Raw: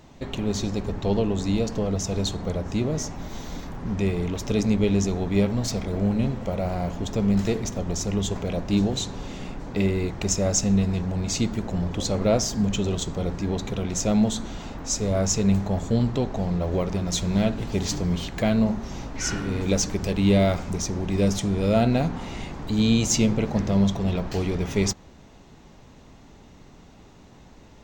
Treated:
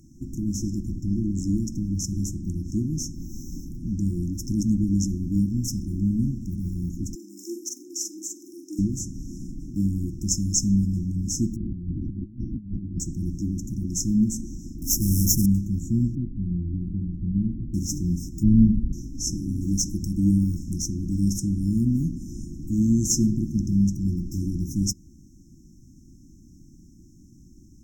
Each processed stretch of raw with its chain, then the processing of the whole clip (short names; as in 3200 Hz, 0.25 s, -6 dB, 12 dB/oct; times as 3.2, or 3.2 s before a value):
7.15–8.79 steep high-pass 320 Hz 48 dB/oct + doubler 44 ms -3 dB
11.56–13 minimum comb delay 0.53 ms + inverse Chebyshev low-pass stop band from 7500 Hz, stop band 70 dB + negative-ratio compressor -29 dBFS, ratio -0.5
14.82–15.46 half-waves squared off + upward compressor, threshold -29 dBFS
16.15–17.74 LPF 1100 Hz 24 dB/oct + bell 810 Hz -11.5 dB 2 oct
18.43–18.93 sample sorter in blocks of 32 samples + LPF 1200 Hz + tilt -2.5 dB/oct
whole clip: FFT band-reject 360–5200 Hz; bell 12000 Hz +8 dB 0.44 oct